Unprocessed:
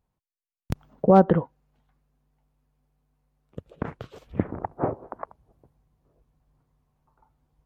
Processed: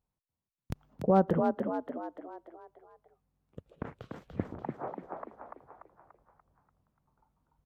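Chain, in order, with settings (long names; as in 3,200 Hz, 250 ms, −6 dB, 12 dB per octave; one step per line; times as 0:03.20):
0:04.62–0:05.02: high-pass filter 600 Hz 12 dB per octave
echo with shifted repeats 291 ms, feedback 49%, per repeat +43 Hz, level −5 dB
level −8.5 dB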